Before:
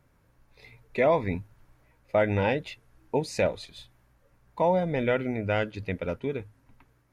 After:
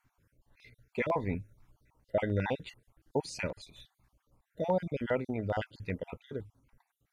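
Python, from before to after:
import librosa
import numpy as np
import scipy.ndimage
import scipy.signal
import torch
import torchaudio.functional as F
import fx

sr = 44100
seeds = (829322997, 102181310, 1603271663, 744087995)

y = fx.spec_dropout(x, sr, seeds[0], share_pct=39)
y = fx.filter_held_notch(y, sr, hz=10.0, low_hz=510.0, high_hz=4900.0)
y = y * librosa.db_to_amplitude(-3.5)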